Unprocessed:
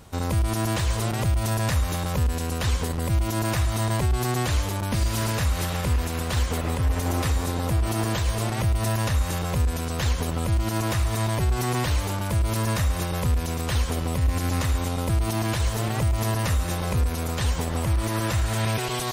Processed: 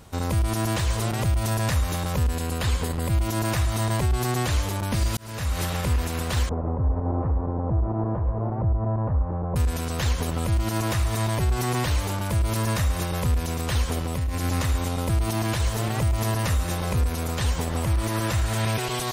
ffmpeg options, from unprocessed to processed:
ffmpeg -i in.wav -filter_complex "[0:a]asettb=1/sr,asplit=3[link_01][link_02][link_03];[link_01]atrim=end=2.354[link_04];[link_02]atrim=start=2.35:end=3.21,asetpts=PTS-STARTPTS,afade=type=in:duration=0.004:curve=qsin,afade=type=out:start_time=0.856:duration=0.004:curve=qsin,bandreject=frequency=5800:width=7.6[link_05];[link_03]atrim=start=3.206[link_06];[link_04][link_05]acrossfade=duration=0.004:curve1=hsin:curve2=qsin[link_07];[link_07][link_06]acrossfade=duration=0.004:curve1=qsin:curve2=hsin,asettb=1/sr,asplit=3[link_08][link_09][link_10];[link_08]atrim=end=6.494[link_11];[link_09]atrim=start=6.49:end=9.56,asetpts=PTS-STARTPTS,afade=type=in:duration=0.004:curve=qsin,afade=type=out:start_time=3.066:duration=0.004:curve=qsin,lowpass=frequency=1000:width=0.5412,lowpass=frequency=1000:width=1.3066[link_12];[link_10]atrim=start=9.556[link_13];[link_11][link_12]acrossfade=duration=0.004:curve1=hsin:curve2=qsin[link_14];[link_14][link_13]acrossfade=duration=0.004:curve1=qsin:curve2=hsin,asettb=1/sr,asplit=3[link_15][link_16][link_17];[link_15]atrim=end=13.984[link_18];[link_16]atrim=start=13.98:end=14.39,asetpts=PTS-STARTPTS,afade=type=in:duration=0.004:curve=qsin,afade=type=out:start_time=0.406:duration=0.004:curve=qsin,acompressor=threshold=-22dB:ratio=6:attack=3.2:release=140:knee=1:detection=peak[link_19];[link_17]atrim=start=14.386[link_20];[link_18][link_19]acrossfade=duration=0.004:curve1=hsin:curve2=qsin[link_21];[link_21][link_20]acrossfade=duration=0.004:curve1=qsin:curve2=hsin,asplit=2[link_22][link_23];[link_22]atrim=end=5.17,asetpts=PTS-STARTPTS,afade=type=out:start_time=5.166:duration=0.004:curve=hsin[link_24];[link_23]atrim=start=5.17,asetpts=PTS-STARTPTS,afade=type=in:duration=0.43[link_25];[link_24][link_25]concat=n=2:v=0:a=1" out.wav

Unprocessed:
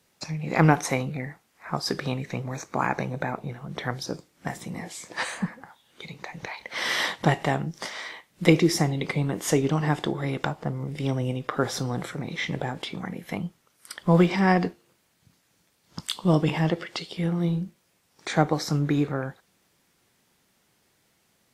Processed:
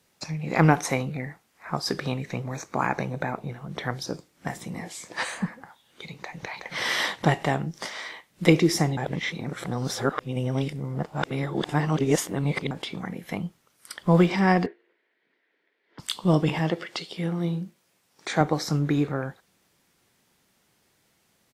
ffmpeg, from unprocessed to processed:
ffmpeg -i in.wav -filter_complex "[0:a]asplit=2[link_01][link_02];[link_02]afade=type=in:start_time=6.16:duration=0.01,afade=type=out:start_time=6.57:duration=0.01,aecho=0:1:370|740|1110:0.562341|0.0843512|0.0126527[link_03];[link_01][link_03]amix=inputs=2:normalize=0,asettb=1/sr,asplit=3[link_04][link_05][link_06];[link_04]atrim=end=14.664[link_07];[link_05]atrim=start=14.66:end=15.99,asetpts=PTS-STARTPTS,afade=type=in:duration=0.004:curve=qsin,afade=type=out:start_time=1.326:duration=0.004:curve=qsin,highpass=frequency=340:width=0.5412,highpass=frequency=340:width=1.3066,equalizer=frequency=400:width_type=q:width=4:gain=4,equalizer=frequency=570:width_type=q:width=4:gain=-4,equalizer=frequency=810:width_type=q:width=4:gain=-8,equalizer=frequency=1200:width_type=q:width=4:gain=-10,equalizer=frequency=1900:width_type=q:width=4:gain=7,equalizer=frequency=2700:width_type=q:width=4:gain=-5,lowpass=frequency=2900:width=0.5412,lowpass=frequency=2900:width=1.3066[link_08];[link_06]atrim=start=15.986[link_09];[link_07][link_08]acrossfade=duration=0.004:curve1=hsin:curve2=qsin[link_10];[link_10][link_09]acrossfade=duration=0.004:curve1=qsin:curve2=hsin,asettb=1/sr,asplit=3[link_11][link_12][link_13];[link_11]atrim=end=16.594[link_14];[link_12]atrim=start=16.59:end=18.41,asetpts=PTS-STARTPTS,afade=type=in:duration=0.004:curve=qsin,afade=type=out:start_time=1.816:duration=0.004:curve=qsin,highpass=frequency=150:poles=1[link_15];[link_13]atrim=start=18.406[link_16];[link_14][link_15]acrossfade=duration=0.004:curve1=hsin:curve2=qsin[link_17];[link_17][link_16]acrossfade=duration=0.004:curve1=qsin:curve2=hsin,asplit=3[link_18][link_19][link_20];[link_18]atrim=end=8.972[link_21];[link_19]atrim=start=8.968:end=12.712,asetpts=PTS-STARTPTS,areverse[link_22];[link_20]atrim=start=12.708[link_23];[link_21][link_22]acrossfade=duration=0.004:curve1=hsin:curve2=hsin[link_24];[link_24][link_23]acrossfade=duration=0.004:curve1=hsin:curve2=hsin" out.wav

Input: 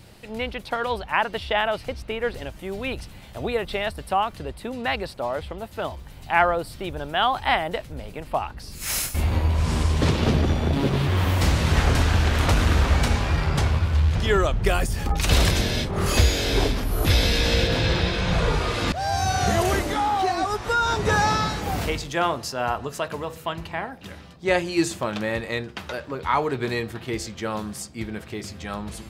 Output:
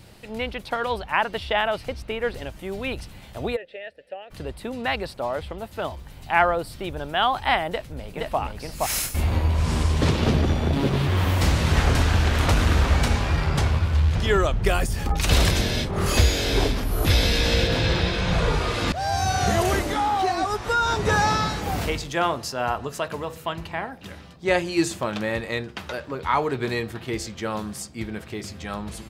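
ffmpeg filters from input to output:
ffmpeg -i in.wav -filter_complex "[0:a]asplit=3[link_01][link_02][link_03];[link_01]afade=type=out:start_time=3.55:duration=0.02[link_04];[link_02]asplit=3[link_05][link_06][link_07];[link_05]bandpass=frequency=530:width_type=q:width=8,volume=0dB[link_08];[link_06]bandpass=frequency=1840:width_type=q:width=8,volume=-6dB[link_09];[link_07]bandpass=frequency=2480:width_type=q:width=8,volume=-9dB[link_10];[link_08][link_09][link_10]amix=inputs=3:normalize=0,afade=type=in:start_time=3.55:duration=0.02,afade=type=out:start_time=4.3:duration=0.02[link_11];[link_03]afade=type=in:start_time=4.3:duration=0.02[link_12];[link_04][link_11][link_12]amix=inputs=3:normalize=0,asplit=2[link_13][link_14];[link_14]afade=type=in:start_time=7.69:duration=0.01,afade=type=out:start_time=8.39:duration=0.01,aecho=0:1:470|940:0.841395|0.0841395[link_15];[link_13][link_15]amix=inputs=2:normalize=0" out.wav

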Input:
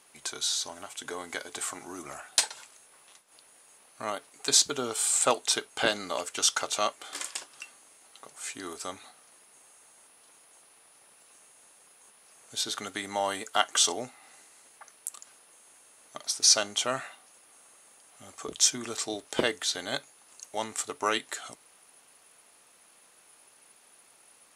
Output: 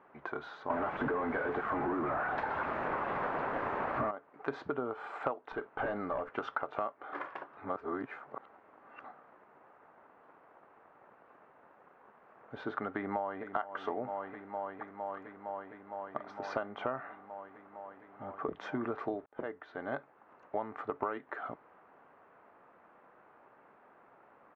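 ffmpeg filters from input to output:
ffmpeg -i in.wav -filter_complex "[0:a]asettb=1/sr,asplit=3[link_01][link_02][link_03];[link_01]atrim=end=0.704[link_04];[link_02]atrim=start=0.7:end=4.11,asetpts=PTS-STARTPTS,afade=type=in:duration=0.004:curve=qsin,afade=type=out:start_time=3.406:duration=0.004:curve=qsin,aeval=exprs='val(0)+0.5*0.1*sgn(val(0))':channel_layout=same[link_05];[link_03]atrim=start=4.106[link_06];[link_04][link_05]acrossfade=duration=0.004:curve1=hsin:curve2=qsin[link_07];[link_07][link_06]acrossfade=duration=0.004:curve1=qsin:curve2=hsin,asettb=1/sr,asplit=3[link_08][link_09][link_10];[link_08]atrim=end=5.524[link_11];[link_09]atrim=start=5.52:end=6.34,asetpts=PTS-STARTPTS,afade=type=in:duration=0.004:curve=qsin,afade=type=out:start_time=0.816:duration=0.004:curve=qsin,aeval=exprs='(tanh(31.6*val(0)+0.25)-tanh(0.25))/31.6':channel_layout=same[link_12];[link_10]atrim=start=6.336[link_13];[link_11][link_12]acrossfade=duration=0.004:curve1=hsin:curve2=qsin[link_14];[link_14][link_13]acrossfade=duration=0.004:curve1=qsin:curve2=hsin,asplit=2[link_15][link_16];[link_16]afade=type=in:start_time=12.94:duration=0.01,afade=type=out:start_time=13.47:duration=0.01,aecho=0:1:460|920|1380|1840|2300|2760|3220|3680|4140|4600|5060|5520:0.266073|0.226162|0.192237|0.163402|0.138892|0.118058|0.100349|0.0852967|0.0725022|0.0616269|0.0523829|0.0445254[link_17];[link_15][link_17]amix=inputs=2:normalize=0,asplit=4[link_18][link_19][link_20][link_21];[link_18]atrim=end=7.572[link_22];[link_19]atrim=start=7.568:end=9.042,asetpts=PTS-STARTPTS,areverse[link_23];[link_20]atrim=start=9.038:end=19.26,asetpts=PTS-STARTPTS,afade=type=out:start_time=10.218:duration=0.004:curve=hsin[link_24];[link_21]atrim=start=19.26,asetpts=PTS-STARTPTS,afade=type=in:duration=1.19[link_25];[link_22][link_23]acrossfade=duration=0.004:curve1=hsin:curve2=hsin[link_26];[link_24][link_25]concat=n=2:v=0:a=1[link_27];[link_26][link_27]acrossfade=duration=0.004:curve1=hsin:curve2=hsin,lowpass=frequency=1500:width=0.5412,lowpass=frequency=1500:width=1.3066,lowshelf=frequency=62:gain=-9,acompressor=threshold=-37dB:ratio=12,volume=6dB" out.wav

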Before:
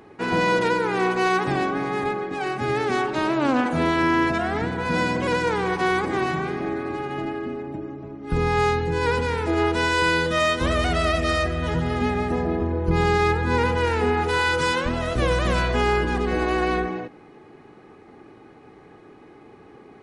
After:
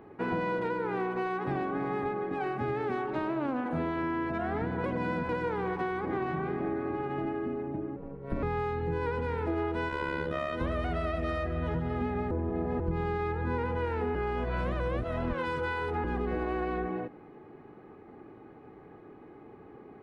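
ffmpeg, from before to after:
ffmpeg -i in.wav -filter_complex "[0:a]asettb=1/sr,asplit=3[link_01][link_02][link_03];[link_01]atrim=end=6.034[link_04];[link_02]atrim=start=6.03:end=7.01,asetpts=PTS-STARTPTS,afade=type=in:duration=0.004:curve=qsin,afade=type=out:start_time=0.976:duration=0.004:curve=qsin,adynamicsmooth=sensitivity=2:basefreq=6200[link_05];[link_03]atrim=start=7.006[link_06];[link_04][link_05]acrossfade=duration=0.004:curve1=hsin:curve2=qsin[link_07];[link_07][link_06]acrossfade=duration=0.004:curve1=qsin:curve2=hsin,asettb=1/sr,asplit=3[link_08][link_09][link_10];[link_08]atrim=end=7.964[link_11];[link_09]atrim=start=7.96:end=8.43,asetpts=PTS-STARTPTS,afade=type=in:duration=0.004:curve=qsin,afade=type=out:start_time=0.466:duration=0.004:curve=qsin,aeval=exprs='val(0)*sin(2*PI*140*n/s)':channel_layout=same[link_12];[link_10]atrim=start=8.426[link_13];[link_11][link_12]acrossfade=duration=0.004:curve1=hsin:curve2=qsin[link_14];[link_14][link_13]acrossfade=duration=0.004:curve1=qsin:curve2=hsin,asplit=3[link_15][link_16][link_17];[link_15]afade=type=out:start_time=9.88:duration=0.02[link_18];[link_16]tremolo=f=70:d=0.788,afade=type=in:start_time=9.88:duration=0.02,afade=type=out:start_time=10.52:duration=0.02[link_19];[link_17]afade=type=in:start_time=10.52:duration=0.02[link_20];[link_18][link_19][link_20]amix=inputs=3:normalize=0,asplit=7[link_21][link_22][link_23][link_24][link_25][link_26][link_27];[link_21]atrim=end=4.842[link_28];[link_22]atrim=start=4.838:end=5.292,asetpts=PTS-STARTPTS,areverse[link_29];[link_23]atrim=start=5.288:end=12.312[link_30];[link_24]atrim=start=12.308:end=12.802,asetpts=PTS-STARTPTS,areverse[link_31];[link_25]atrim=start=12.798:end=14.152[link_32];[link_26]atrim=start=14.148:end=16.042,asetpts=PTS-STARTPTS,areverse[link_33];[link_27]atrim=start=16.038[link_34];[link_28][link_29]acrossfade=duration=0.004:curve1=hsin:curve2=hsin[link_35];[link_35][link_30]acrossfade=duration=0.004:curve1=hsin:curve2=hsin[link_36];[link_36][link_31]acrossfade=duration=0.004:curve1=hsin:curve2=hsin[link_37];[link_37][link_32]acrossfade=duration=0.004:curve1=hsin:curve2=hsin[link_38];[link_38][link_33]acrossfade=duration=0.004:curve1=hsin:curve2=hsin[link_39];[link_39][link_34]acrossfade=duration=0.004:curve1=hsin:curve2=hsin,highshelf=frequency=2600:gain=-9.5,acompressor=threshold=-25dB:ratio=6,equalizer=frequency=6800:width_type=o:width=1.5:gain=-13,volume=-2.5dB" out.wav

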